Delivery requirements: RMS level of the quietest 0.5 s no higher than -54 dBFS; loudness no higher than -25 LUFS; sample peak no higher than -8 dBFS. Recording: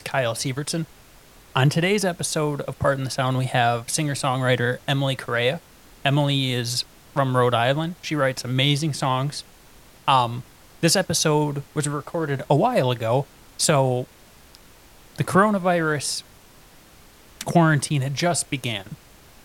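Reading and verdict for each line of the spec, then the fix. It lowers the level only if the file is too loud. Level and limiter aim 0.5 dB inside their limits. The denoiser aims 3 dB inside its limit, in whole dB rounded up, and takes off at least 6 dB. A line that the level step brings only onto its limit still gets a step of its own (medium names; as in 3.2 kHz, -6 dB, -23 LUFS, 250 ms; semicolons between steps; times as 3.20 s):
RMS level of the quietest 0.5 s -50 dBFS: fail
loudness -22.5 LUFS: fail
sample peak -5.0 dBFS: fail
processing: noise reduction 6 dB, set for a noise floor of -50 dBFS; trim -3 dB; peak limiter -8.5 dBFS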